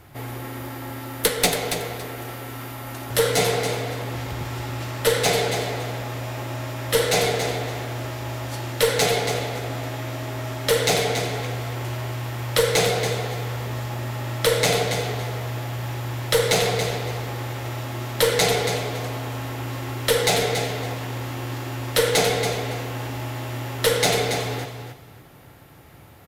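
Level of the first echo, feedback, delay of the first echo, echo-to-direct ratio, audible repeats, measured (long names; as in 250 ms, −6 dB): −8.0 dB, 21%, 280 ms, −8.0 dB, 2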